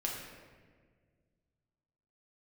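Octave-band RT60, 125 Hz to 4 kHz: 2.7, 2.3, 2.0, 1.4, 1.4, 1.0 seconds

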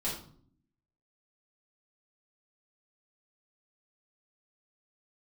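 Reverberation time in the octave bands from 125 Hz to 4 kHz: 0.90, 0.95, 0.60, 0.50, 0.35, 0.40 seconds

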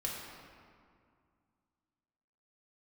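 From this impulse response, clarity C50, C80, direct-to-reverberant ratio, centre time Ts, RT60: 0.5 dB, 2.0 dB, −4.0 dB, 97 ms, 2.2 s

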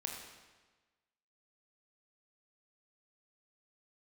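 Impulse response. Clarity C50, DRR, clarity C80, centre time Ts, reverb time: 3.5 dB, 0.5 dB, 5.0 dB, 54 ms, 1.3 s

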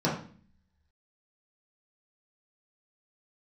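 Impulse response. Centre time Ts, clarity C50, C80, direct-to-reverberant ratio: 32 ms, 5.5 dB, 10.0 dB, −7.0 dB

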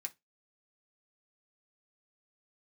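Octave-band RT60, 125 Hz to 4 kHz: 0.20, 0.20, 0.20, 0.15, 0.15, 0.15 seconds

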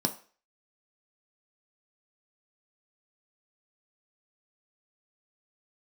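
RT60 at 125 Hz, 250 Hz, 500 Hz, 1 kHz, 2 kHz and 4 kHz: 0.30, 0.35, 0.40, 0.40, 0.40, 0.40 seconds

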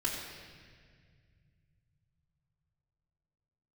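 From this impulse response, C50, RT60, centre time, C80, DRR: 2.5 dB, 1.9 s, 76 ms, 3.5 dB, −5.0 dB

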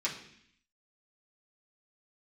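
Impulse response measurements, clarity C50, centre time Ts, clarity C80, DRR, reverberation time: 8.0 dB, 23 ms, 11.0 dB, −7.0 dB, 0.65 s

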